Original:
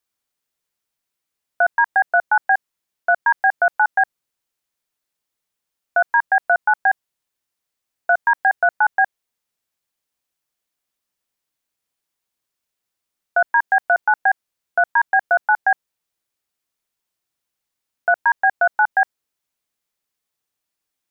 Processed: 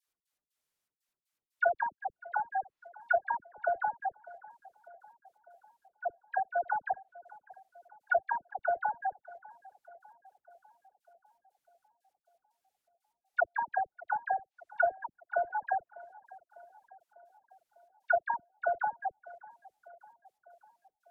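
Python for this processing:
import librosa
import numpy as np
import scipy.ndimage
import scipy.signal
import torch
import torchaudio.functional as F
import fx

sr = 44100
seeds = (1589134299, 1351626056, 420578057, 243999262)

p1 = fx.env_lowpass_down(x, sr, base_hz=510.0, full_db=-15.0)
p2 = fx.step_gate(p1, sr, bpm=120, pattern='x.x.xxx.', floor_db=-60.0, edge_ms=4.5)
p3 = fx.dispersion(p2, sr, late='lows', ms=80.0, hz=1000.0)
p4 = p3 + fx.echo_tape(p3, sr, ms=599, feedback_pct=69, wet_db=-19, lp_hz=1400.0, drive_db=7.0, wow_cents=11, dry=0)
y = p4 * librosa.db_to_amplitude(-4.5)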